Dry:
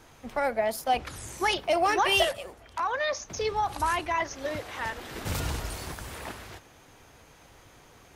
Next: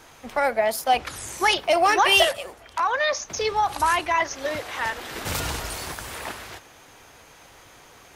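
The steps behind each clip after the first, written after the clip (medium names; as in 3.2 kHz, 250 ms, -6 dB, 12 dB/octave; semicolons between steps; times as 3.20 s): bass shelf 360 Hz -8.5 dB; trim +7 dB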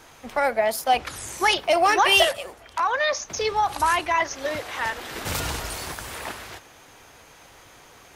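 no audible change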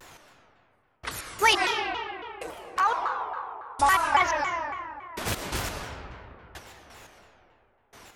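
trance gate "x.....x." 87 bpm -60 dB; algorithmic reverb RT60 2.8 s, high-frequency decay 0.5×, pre-delay 70 ms, DRR 2.5 dB; vibrato with a chosen wave saw down 3.6 Hz, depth 250 cents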